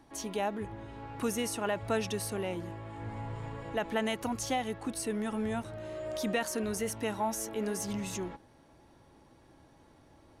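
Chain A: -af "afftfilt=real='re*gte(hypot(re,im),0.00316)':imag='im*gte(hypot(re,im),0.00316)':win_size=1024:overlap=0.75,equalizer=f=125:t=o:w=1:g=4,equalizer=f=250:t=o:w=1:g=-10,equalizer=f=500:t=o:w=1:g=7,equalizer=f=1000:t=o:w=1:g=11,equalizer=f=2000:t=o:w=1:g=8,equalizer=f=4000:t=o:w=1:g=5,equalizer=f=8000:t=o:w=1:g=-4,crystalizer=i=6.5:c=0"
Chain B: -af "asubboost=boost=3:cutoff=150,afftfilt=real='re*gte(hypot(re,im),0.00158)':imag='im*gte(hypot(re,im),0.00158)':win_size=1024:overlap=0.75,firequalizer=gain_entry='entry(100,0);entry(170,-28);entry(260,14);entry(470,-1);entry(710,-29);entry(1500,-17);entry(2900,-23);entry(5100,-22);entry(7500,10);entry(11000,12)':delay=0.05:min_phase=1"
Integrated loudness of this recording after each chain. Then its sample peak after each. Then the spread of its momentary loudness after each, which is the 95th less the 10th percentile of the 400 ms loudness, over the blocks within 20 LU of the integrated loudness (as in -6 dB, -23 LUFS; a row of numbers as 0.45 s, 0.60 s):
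-22.5 LUFS, -32.5 LUFS; -3.5 dBFS, -15.5 dBFS; 13 LU, 11 LU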